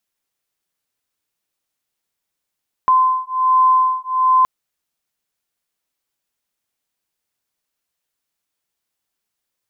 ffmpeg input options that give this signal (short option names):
-f lavfi -i "aevalsrc='0.178*(sin(2*PI*1030*t)+sin(2*PI*1031.3*t))':d=1.57:s=44100"